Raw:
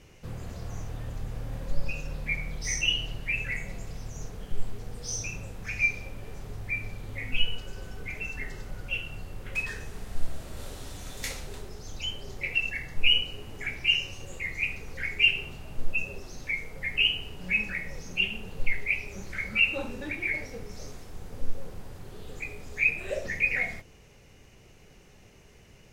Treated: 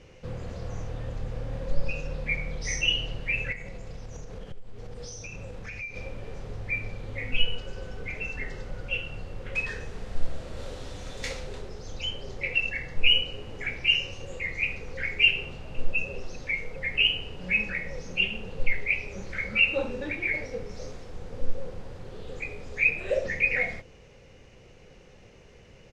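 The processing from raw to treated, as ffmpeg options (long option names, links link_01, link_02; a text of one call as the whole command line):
ffmpeg -i in.wav -filter_complex "[0:a]asettb=1/sr,asplit=3[link_01][link_02][link_03];[link_01]atrim=end=3.524[link_04];[link_02]atrim=start=3.52:end=5.96,asetpts=PTS-STARTPTS,afade=type=in:duration=0.004:curve=qsin,afade=type=out:start_time=2.436:duration=0.004:curve=qsin,acompressor=threshold=-36dB:ratio=6:attack=3.2:release=140:knee=1:detection=peak[link_05];[link_03]atrim=start=5.956[link_06];[link_04][link_05]acrossfade=duration=0.004:curve1=hsin:curve2=qsin[link_07];[link_07][link_06]acrossfade=duration=0.004:curve1=qsin:curve2=hsin,asplit=2[link_08][link_09];[link_09]afade=type=in:start_time=15.34:duration=0.01,afade=type=out:start_time=15.95:duration=0.01,aecho=0:1:400|800|1200|1600|2000|2400|2800:0.158489|0.103018|0.0669617|0.0435251|0.0282913|0.0183894|0.0119531[link_10];[link_08][link_10]amix=inputs=2:normalize=0,lowpass=5500,equalizer=frequency=510:width=5.8:gain=9.5,volume=1.5dB" out.wav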